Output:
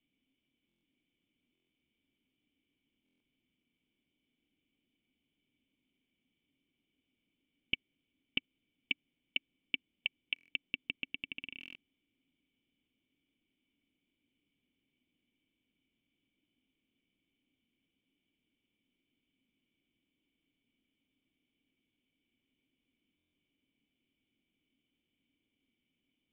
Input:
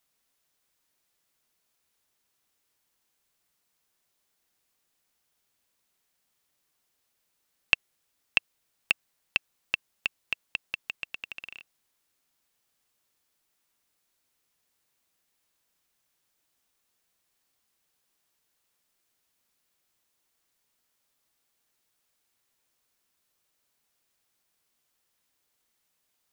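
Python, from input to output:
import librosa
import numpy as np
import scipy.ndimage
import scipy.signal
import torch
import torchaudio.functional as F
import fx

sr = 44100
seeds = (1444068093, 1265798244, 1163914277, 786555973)

y = (np.mod(10.0 ** (14.5 / 20.0) * x + 1.0, 2.0) - 1.0) / 10.0 ** (14.5 / 20.0)
y = fx.formant_cascade(y, sr, vowel='i')
y = fx.buffer_glitch(y, sr, at_s=(0.67, 1.53, 3.04, 10.34, 11.59, 23.17), block=1024, repeats=6)
y = y * librosa.db_to_amplitude(14.5)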